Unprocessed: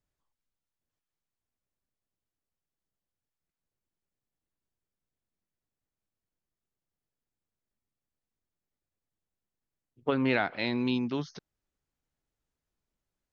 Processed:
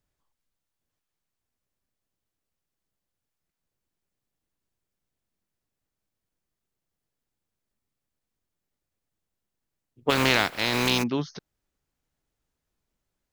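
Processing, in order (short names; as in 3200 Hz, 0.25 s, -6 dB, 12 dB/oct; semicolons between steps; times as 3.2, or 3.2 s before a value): 10.09–11.02 spectral contrast lowered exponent 0.38; gain +5 dB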